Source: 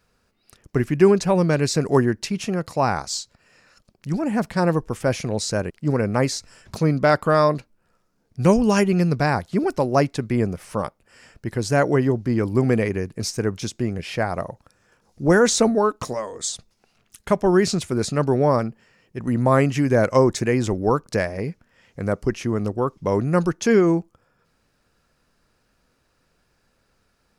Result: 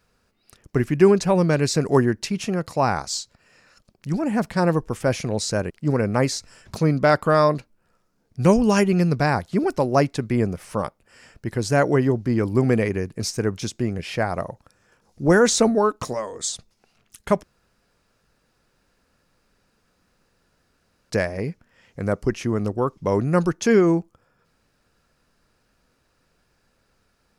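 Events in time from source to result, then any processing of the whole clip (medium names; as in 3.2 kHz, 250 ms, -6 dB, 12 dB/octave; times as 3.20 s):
17.43–21.10 s: room tone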